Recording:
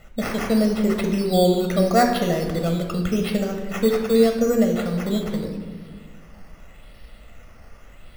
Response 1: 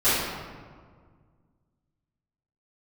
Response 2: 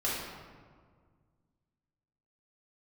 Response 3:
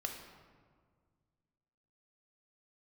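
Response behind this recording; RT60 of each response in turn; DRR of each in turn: 3; 1.8 s, 1.8 s, 1.8 s; -15.5 dB, -6.5 dB, 3.0 dB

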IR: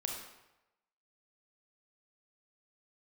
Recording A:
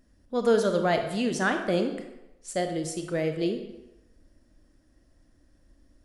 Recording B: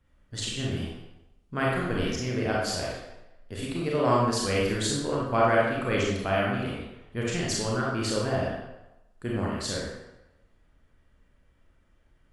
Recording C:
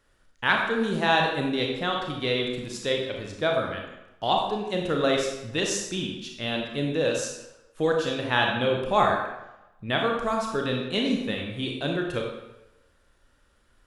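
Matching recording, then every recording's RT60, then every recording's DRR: C; 0.95 s, 0.95 s, 0.95 s; 5.5 dB, -4.5 dB, 0.5 dB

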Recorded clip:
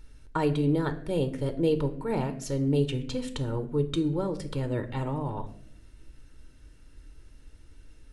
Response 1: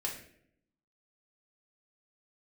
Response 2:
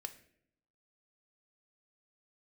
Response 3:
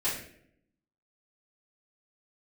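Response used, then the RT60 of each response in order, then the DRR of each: 2; 0.65 s, 0.70 s, 0.65 s; -2.0 dB, 8.0 dB, -11.0 dB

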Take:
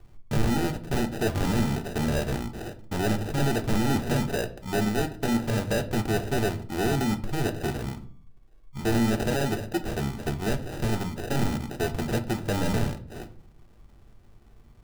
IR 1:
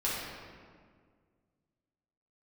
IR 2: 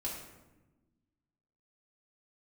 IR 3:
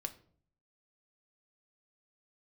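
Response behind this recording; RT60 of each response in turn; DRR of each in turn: 3; 1.9 s, 1.1 s, 0.55 s; -8.5 dB, -5.5 dB, 6.0 dB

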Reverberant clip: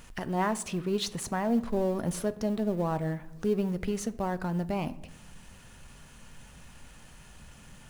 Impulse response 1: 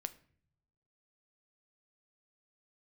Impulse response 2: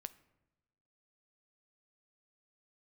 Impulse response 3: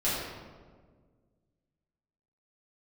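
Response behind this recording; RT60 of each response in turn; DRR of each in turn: 2; no single decay rate, no single decay rate, 1.6 s; 11.5 dB, 13.0 dB, -11.0 dB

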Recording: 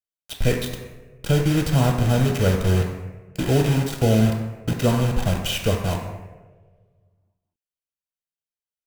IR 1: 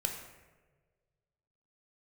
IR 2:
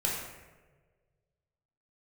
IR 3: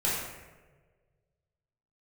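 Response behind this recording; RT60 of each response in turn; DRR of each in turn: 1; 1.4 s, 1.4 s, 1.4 s; 1.5 dB, -5.0 dB, -9.0 dB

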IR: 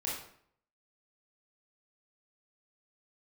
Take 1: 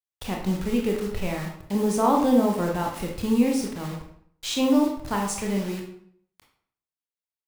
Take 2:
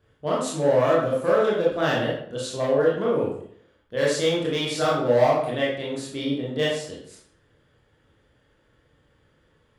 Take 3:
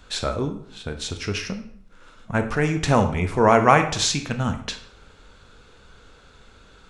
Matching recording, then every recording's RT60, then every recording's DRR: 2; 0.60 s, 0.60 s, 0.60 s; 0.5 dB, -5.5 dB, 7.0 dB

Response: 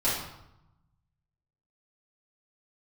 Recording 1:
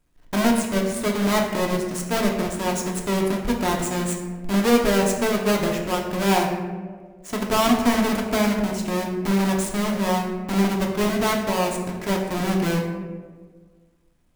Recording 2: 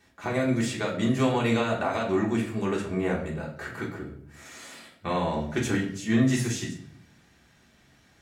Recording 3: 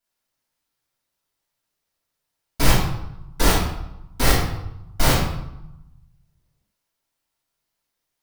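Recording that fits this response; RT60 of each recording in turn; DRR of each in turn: 3; 1.6 s, 0.65 s, 0.85 s; -0.5 dB, -4.0 dB, -10.5 dB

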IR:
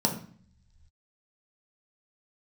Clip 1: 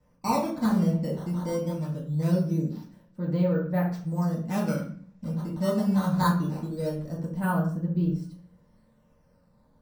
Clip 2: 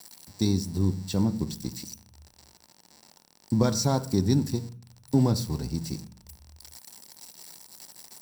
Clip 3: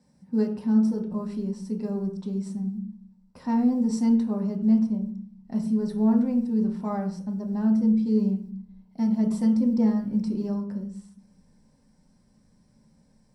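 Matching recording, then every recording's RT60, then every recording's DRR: 3; 0.50 s, 0.50 s, 0.50 s; -7.0 dB, 10.0 dB, 0.5 dB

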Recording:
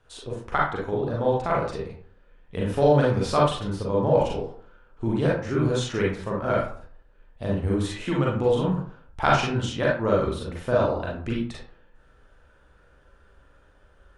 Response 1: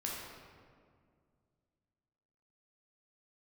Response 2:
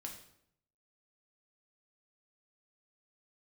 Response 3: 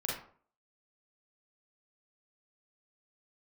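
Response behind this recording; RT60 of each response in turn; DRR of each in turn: 3; 2.1 s, 0.70 s, 0.50 s; -4.0 dB, 0.5 dB, -4.5 dB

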